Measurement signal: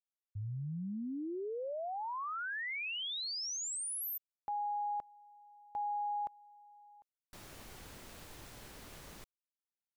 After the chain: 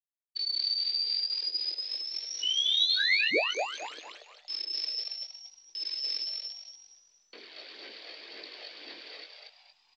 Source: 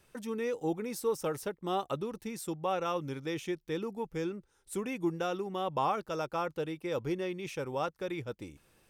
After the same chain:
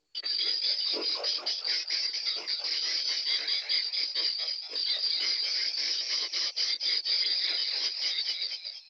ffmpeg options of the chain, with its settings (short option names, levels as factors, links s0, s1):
-filter_complex "[0:a]afftfilt=real='real(if(lt(b,272),68*(eq(floor(b/68),0)*3+eq(floor(b/68),1)*2+eq(floor(b/68),2)*1+eq(floor(b/68),3)*0)+mod(b,68),b),0)':imag='imag(if(lt(b,272),68*(eq(floor(b/68),0)*3+eq(floor(b/68),1)*2+eq(floor(b/68),2)*1+eq(floor(b/68),3)*0)+mod(b,68),b),0)':win_size=2048:overlap=0.75,anlmdn=0.000398,asoftclip=type=hard:threshold=0.0562,aphaser=in_gain=1:out_gain=1:delay=1.6:decay=0.55:speed=1.9:type=sinusoidal,aeval=exprs='0.126*sin(PI/2*2.51*val(0)/0.126)':c=same,flanger=delay=18:depth=3.9:speed=0.49,adynamicsmooth=sensitivity=7:basefreq=2100,afreqshift=14,highpass=f=310:w=0.5412,highpass=f=310:w=1.3066,equalizer=f=320:t=q:w=4:g=8,equalizer=f=450:t=q:w=4:g=8,equalizer=f=830:t=q:w=4:g=-10,equalizer=f=1300:t=q:w=4:g=-8,equalizer=f=2300:t=q:w=4:g=4,equalizer=f=4000:t=q:w=4:g=6,lowpass=f=4200:w=0.5412,lowpass=f=4200:w=1.3066,asplit=6[s0][s1][s2][s3][s4][s5];[s1]adelay=232,afreqshift=140,volume=0.708[s6];[s2]adelay=464,afreqshift=280,volume=0.248[s7];[s3]adelay=696,afreqshift=420,volume=0.0871[s8];[s4]adelay=928,afreqshift=560,volume=0.0302[s9];[s5]adelay=1160,afreqshift=700,volume=0.0106[s10];[s0][s6][s7][s8][s9][s10]amix=inputs=6:normalize=0" -ar 16000 -c:a pcm_mulaw